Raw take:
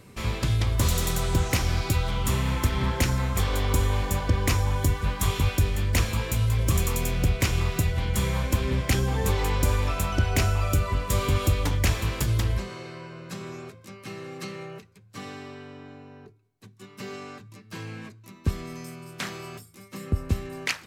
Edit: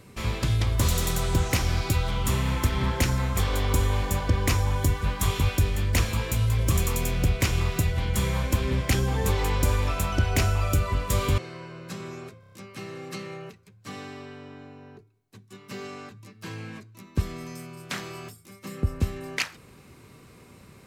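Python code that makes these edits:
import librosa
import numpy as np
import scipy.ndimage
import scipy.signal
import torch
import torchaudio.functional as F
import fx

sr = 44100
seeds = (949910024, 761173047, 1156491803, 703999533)

y = fx.edit(x, sr, fx.cut(start_s=11.38, length_s=1.41),
    fx.stutter(start_s=13.81, slice_s=0.03, count=5), tone=tone)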